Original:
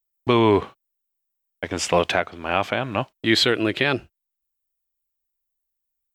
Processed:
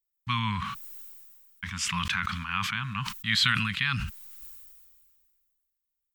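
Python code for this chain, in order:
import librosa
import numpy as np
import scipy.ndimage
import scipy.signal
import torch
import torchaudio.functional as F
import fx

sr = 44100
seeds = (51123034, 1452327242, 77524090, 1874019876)

y = scipy.signal.sosfilt(scipy.signal.ellip(3, 1.0, 40, [200.0, 1100.0], 'bandstop', fs=sr, output='sos'), x)
y = fx.sustainer(y, sr, db_per_s=30.0)
y = F.gain(torch.from_numpy(y), -4.5).numpy()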